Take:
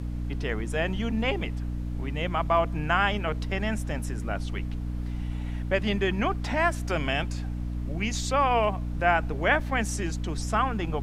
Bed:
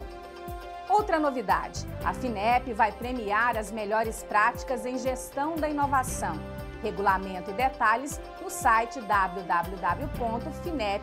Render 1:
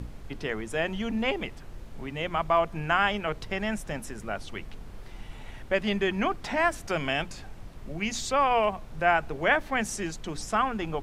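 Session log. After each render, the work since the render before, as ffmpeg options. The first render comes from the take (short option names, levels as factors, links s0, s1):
-af "bandreject=f=60:t=h:w=6,bandreject=f=120:t=h:w=6,bandreject=f=180:t=h:w=6,bandreject=f=240:t=h:w=6,bandreject=f=300:t=h:w=6"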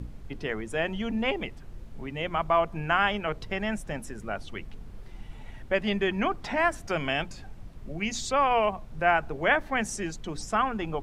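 -af "afftdn=nr=6:nf=-44"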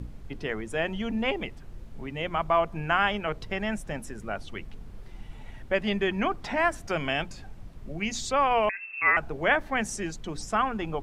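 -filter_complex "[0:a]asettb=1/sr,asplit=3[s0][s1][s2];[s0]atrim=end=8.694[s3];[s1]atrim=start=8.69:end=9.17,asetpts=PTS-STARTPTS,afade=t=in:d=0.004:c=qsin,afade=t=out:st=0.476:d=0.004:c=qsin,lowpass=f=2300:t=q:w=0.5098,lowpass=f=2300:t=q:w=0.6013,lowpass=f=2300:t=q:w=0.9,lowpass=f=2300:t=q:w=2.563,afreqshift=-2700[s4];[s2]atrim=start=9.166[s5];[s3][s4]acrossfade=d=0.004:c1=hsin:c2=qsin[s6];[s6][s5]acrossfade=d=0.004:c1=qsin:c2=hsin"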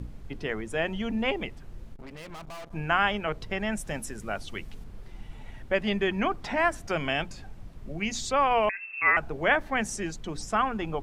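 -filter_complex "[0:a]asettb=1/sr,asplit=3[s0][s1][s2];[s0]atrim=end=1.934[s3];[s1]atrim=start=1.93:end=2.73,asetpts=PTS-STARTPTS,afade=t=in:d=0.004:c=qsin,afade=t=out:st=0.796:d=0.004:c=qsin,aeval=exprs='(tanh(100*val(0)+0.75)-tanh(0.75))/100':c=same[s4];[s2]atrim=start=2.726[s5];[s3][s4]acrossfade=d=0.004:c1=hsin:c2=qsin[s6];[s6][s5]acrossfade=d=0.004:c1=qsin:c2=hsin,asettb=1/sr,asplit=3[s7][s8][s9];[s7]atrim=end=3.774[s10];[s8]atrim=start=3.77:end=4.84,asetpts=PTS-STARTPTS,afade=t=in:d=0.004:c=qsin,afade=t=out:st=1.066:d=0.004:c=qsin,highshelf=f=3700:g=8[s11];[s9]atrim=start=4.836[s12];[s10][s11]acrossfade=d=0.004:c1=hsin:c2=qsin[s13];[s13][s12]acrossfade=d=0.004:c1=qsin:c2=hsin"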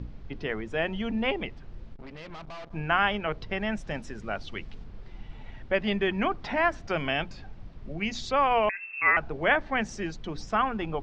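-af "lowpass=f=5200:w=0.5412,lowpass=f=5200:w=1.3066"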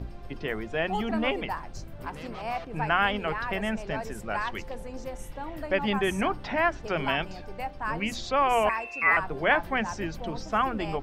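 -filter_complex "[1:a]volume=0.355[s0];[0:a][s0]amix=inputs=2:normalize=0"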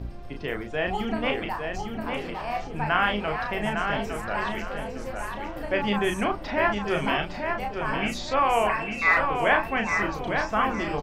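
-filter_complex "[0:a]asplit=2[s0][s1];[s1]adelay=34,volume=0.562[s2];[s0][s2]amix=inputs=2:normalize=0,asplit=2[s3][s4];[s4]adelay=856,lowpass=f=4400:p=1,volume=0.562,asplit=2[s5][s6];[s6]adelay=856,lowpass=f=4400:p=1,volume=0.32,asplit=2[s7][s8];[s8]adelay=856,lowpass=f=4400:p=1,volume=0.32,asplit=2[s9][s10];[s10]adelay=856,lowpass=f=4400:p=1,volume=0.32[s11];[s3][s5][s7][s9][s11]amix=inputs=5:normalize=0"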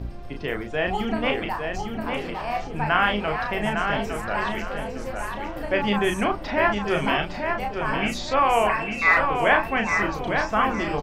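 -af "volume=1.33"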